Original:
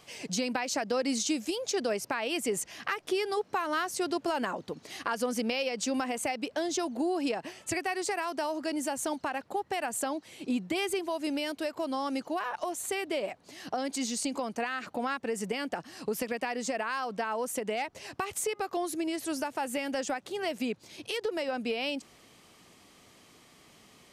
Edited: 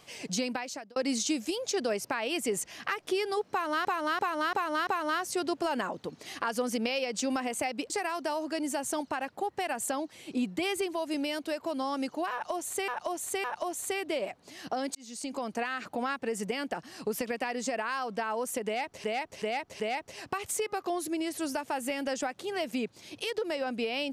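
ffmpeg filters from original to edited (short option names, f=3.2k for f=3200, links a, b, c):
-filter_complex "[0:a]asplit=13[a][b][c][d][e][f][g][h][i][j][k][l][m];[a]atrim=end=0.96,asetpts=PTS-STARTPTS,afade=t=out:st=0.41:d=0.55[n];[b]atrim=start=0.96:end=3.852,asetpts=PTS-STARTPTS,afade=t=in:d=0.004:c=hsin[o];[c]atrim=start=3.508:end=3.852[p];[d]atrim=start=3.508:end=3.852[q];[e]atrim=start=3.508:end=3.852[r];[f]atrim=start=3.508:end=6.542[s];[g]atrim=start=8.028:end=13.012[t];[h]atrim=start=12.448:end=13.012[u];[i]atrim=start=12.448:end=13.96,asetpts=PTS-STARTPTS,afade=t=out:st=1.508:d=0.004:c=hsin[v];[j]atrim=start=13.96:end=18.052,asetpts=PTS-STARTPTS,afade=t=in:d=0.53[w];[k]atrim=start=17.668:end=18.052[x];[l]atrim=start=17.668:end=18.052[y];[m]atrim=start=17.668[z];[n][o]concat=n=2:v=0:a=1[aa];[aa][p]acrossfade=d=0.004:c1=hsin:c2=hsin[ab];[ab][q]acrossfade=d=0.004:c1=hsin:c2=hsin[ac];[ac][r]acrossfade=d=0.004:c1=hsin:c2=hsin[ad];[ad][s]acrossfade=d=0.004:c1=hsin:c2=hsin[ae];[ae][t]acrossfade=d=0.004:c1=hsin:c2=hsin[af];[af][u]acrossfade=d=0.004:c1=hsin:c2=hsin[ag];[v][w]concat=n=2:v=0:a=1[ah];[ag][ah]acrossfade=d=0.004:c1=hsin:c2=hsin[ai];[ai][x]acrossfade=d=0.004:c1=hsin:c2=hsin[aj];[aj][y]acrossfade=d=0.004:c1=hsin:c2=hsin[ak];[ak][z]acrossfade=d=0.004:c1=hsin:c2=hsin"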